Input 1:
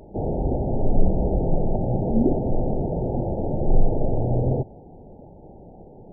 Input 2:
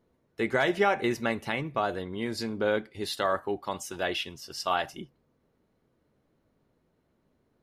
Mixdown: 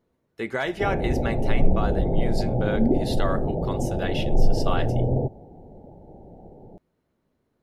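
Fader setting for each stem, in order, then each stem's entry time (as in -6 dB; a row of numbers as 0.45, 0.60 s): -1.0, -1.5 dB; 0.65, 0.00 s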